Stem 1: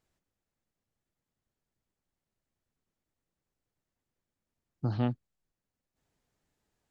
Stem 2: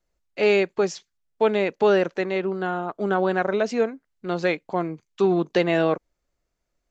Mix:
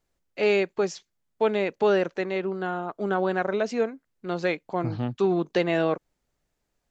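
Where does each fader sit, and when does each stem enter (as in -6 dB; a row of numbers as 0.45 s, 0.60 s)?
0.0 dB, -3.0 dB; 0.00 s, 0.00 s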